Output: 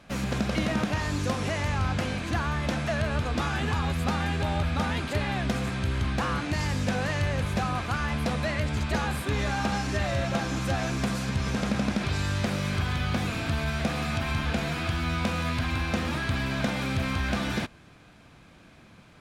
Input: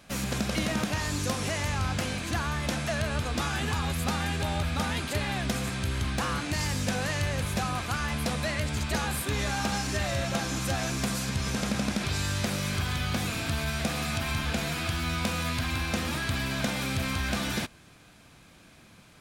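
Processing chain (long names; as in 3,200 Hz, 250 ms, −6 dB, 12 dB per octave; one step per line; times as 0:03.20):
low-pass filter 2,600 Hz 6 dB per octave
level +2.5 dB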